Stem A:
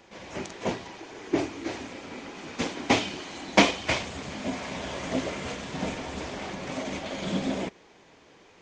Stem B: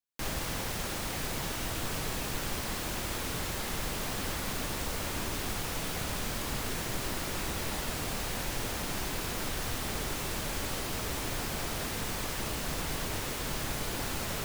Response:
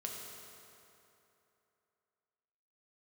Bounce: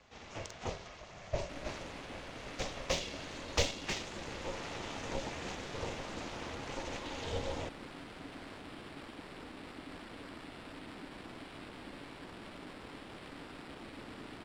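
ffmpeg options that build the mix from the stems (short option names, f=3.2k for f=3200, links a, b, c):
-filter_complex "[0:a]aemphasis=mode=production:type=cd,volume=-5dB[a];[1:a]acrusher=samples=7:mix=1:aa=0.000001,adelay=1300,volume=-11dB[b];[a][b]amix=inputs=2:normalize=0,acrossover=split=370|3000[c][d][e];[d]acompressor=threshold=-37dB:ratio=6[f];[c][f][e]amix=inputs=3:normalize=0,aeval=exprs='val(0)*sin(2*PI*280*n/s)':c=same,adynamicsmooth=sensitivity=4:basefreq=7.1k"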